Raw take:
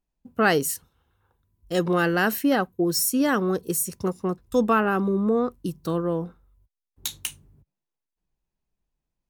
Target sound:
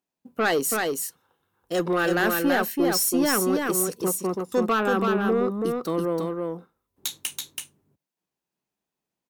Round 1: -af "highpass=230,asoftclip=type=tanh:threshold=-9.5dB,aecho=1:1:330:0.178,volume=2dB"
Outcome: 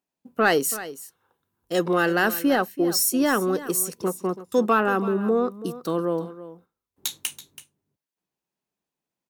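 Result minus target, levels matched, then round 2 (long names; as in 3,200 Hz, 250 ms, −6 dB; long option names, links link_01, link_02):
echo-to-direct −11.5 dB; soft clipping: distortion −11 dB
-af "highpass=230,asoftclip=type=tanh:threshold=-18.5dB,aecho=1:1:330:0.668,volume=2dB"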